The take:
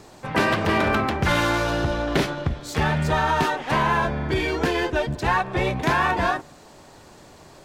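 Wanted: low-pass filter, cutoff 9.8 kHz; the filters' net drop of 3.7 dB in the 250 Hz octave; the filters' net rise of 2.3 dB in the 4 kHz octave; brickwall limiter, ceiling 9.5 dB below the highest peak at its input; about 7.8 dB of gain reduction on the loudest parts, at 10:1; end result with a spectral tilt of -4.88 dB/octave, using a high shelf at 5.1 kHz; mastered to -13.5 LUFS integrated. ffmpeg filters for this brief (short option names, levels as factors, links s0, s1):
-af "lowpass=9800,equalizer=f=250:t=o:g=-5.5,equalizer=f=4000:t=o:g=4.5,highshelf=f=5100:g=-3.5,acompressor=threshold=0.0562:ratio=10,volume=7.5,alimiter=limit=0.668:level=0:latency=1"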